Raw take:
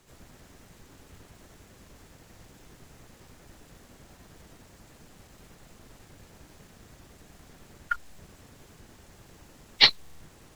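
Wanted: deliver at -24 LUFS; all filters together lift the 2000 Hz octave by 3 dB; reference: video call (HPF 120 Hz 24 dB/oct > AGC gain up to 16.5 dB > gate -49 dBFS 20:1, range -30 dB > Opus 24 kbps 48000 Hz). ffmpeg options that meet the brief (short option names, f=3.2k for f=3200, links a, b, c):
-af "highpass=f=120:w=0.5412,highpass=f=120:w=1.3066,equalizer=f=2k:t=o:g=3.5,dynaudnorm=m=16.5dB,agate=range=-30dB:threshold=-49dB:ratio=20,volume=-2.5dB" -ar 48000 -c:a libopus -b:a 24k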